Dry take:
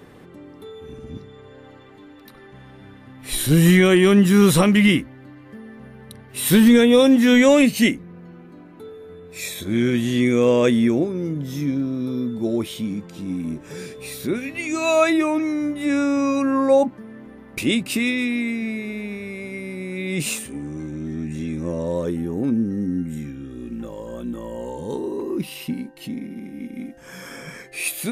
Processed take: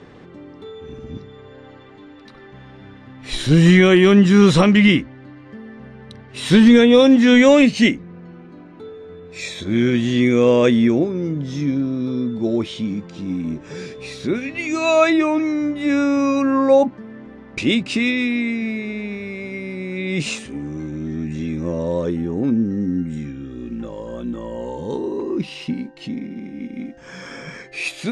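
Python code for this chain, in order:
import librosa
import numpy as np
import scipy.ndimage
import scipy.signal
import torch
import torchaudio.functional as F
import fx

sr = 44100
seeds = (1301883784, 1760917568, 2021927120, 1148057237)

y = scipy.signal.sosfilt(scipy.signal.butter(4, 6400.0, 'lowpass', fs=sr, output='sos'), x)
y = y * librosa.db_to_amplitude(2.5)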